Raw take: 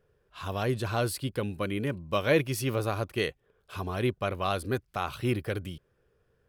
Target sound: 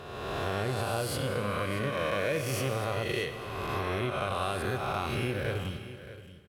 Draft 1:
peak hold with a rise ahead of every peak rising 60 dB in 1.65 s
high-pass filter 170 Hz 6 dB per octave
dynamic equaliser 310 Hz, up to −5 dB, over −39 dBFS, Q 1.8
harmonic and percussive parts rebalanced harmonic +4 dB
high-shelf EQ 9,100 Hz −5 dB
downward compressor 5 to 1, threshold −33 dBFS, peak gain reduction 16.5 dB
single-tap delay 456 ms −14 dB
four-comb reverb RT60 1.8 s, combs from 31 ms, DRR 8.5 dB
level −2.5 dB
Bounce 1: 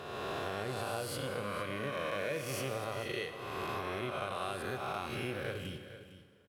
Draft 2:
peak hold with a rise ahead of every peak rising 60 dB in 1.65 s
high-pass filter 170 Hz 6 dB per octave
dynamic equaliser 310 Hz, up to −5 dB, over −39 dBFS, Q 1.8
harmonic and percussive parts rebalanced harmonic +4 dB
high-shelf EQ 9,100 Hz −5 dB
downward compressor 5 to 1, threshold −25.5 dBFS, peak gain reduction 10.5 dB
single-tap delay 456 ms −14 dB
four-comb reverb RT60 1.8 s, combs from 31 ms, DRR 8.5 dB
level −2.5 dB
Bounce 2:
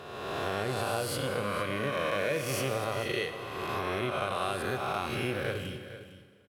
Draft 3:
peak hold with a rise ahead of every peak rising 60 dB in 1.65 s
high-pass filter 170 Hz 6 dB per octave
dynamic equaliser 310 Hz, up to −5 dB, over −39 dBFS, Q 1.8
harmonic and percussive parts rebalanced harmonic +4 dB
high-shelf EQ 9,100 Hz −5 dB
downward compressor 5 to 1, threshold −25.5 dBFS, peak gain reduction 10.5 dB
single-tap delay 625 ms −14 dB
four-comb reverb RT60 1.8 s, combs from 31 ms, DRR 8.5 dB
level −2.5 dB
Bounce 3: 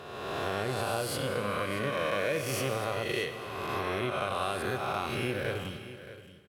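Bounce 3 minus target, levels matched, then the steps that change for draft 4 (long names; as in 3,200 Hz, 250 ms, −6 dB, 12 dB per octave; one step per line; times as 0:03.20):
125 Hz band −4.0 dB
remove: high-pass filter 170 Hz 6 dB per octave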